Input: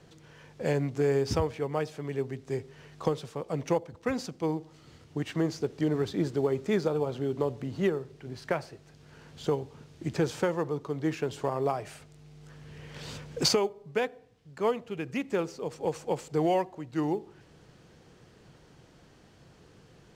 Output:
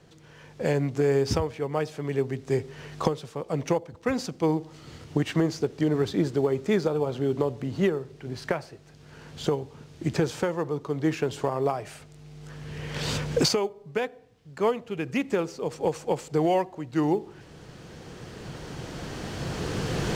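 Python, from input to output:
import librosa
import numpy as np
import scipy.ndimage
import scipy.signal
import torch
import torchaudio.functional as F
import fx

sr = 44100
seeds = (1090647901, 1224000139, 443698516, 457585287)

y = fx.recorder_agc(x, sr, target_db=-14.5, rise_db_per_s=7.9, max_gain_db=30)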